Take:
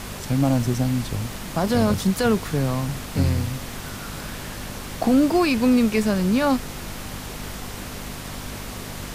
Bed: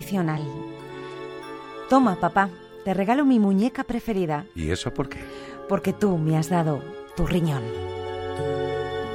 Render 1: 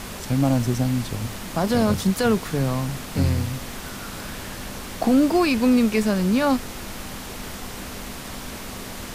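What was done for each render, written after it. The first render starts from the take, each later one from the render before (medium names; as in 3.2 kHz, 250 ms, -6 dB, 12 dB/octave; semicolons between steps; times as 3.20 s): de-hum 50 Hz, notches 3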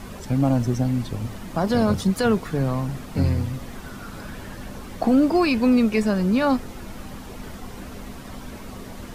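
noise reduction 10 dB, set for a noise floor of -35 dBFS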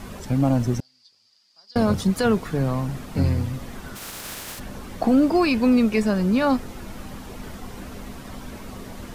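0.80–1.76 s: band-pass filter 4.8 kHz, Q 13; 3.95–4.58 s: spectral contrast reduction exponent 0.28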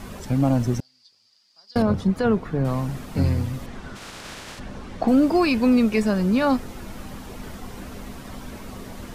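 1.82–2.65 s: low-pass 1.5 kHz 6 dB/octave; 3.66–5.08 s: distance through air 72 m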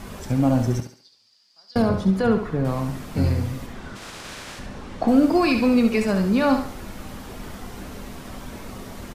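doubling 26 ms -13 dB; on a send: thinning echo 69 ms, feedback 40%, high-pass 250 Hz, level -7 dB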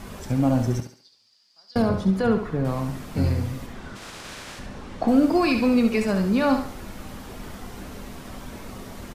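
trim -1.5 dB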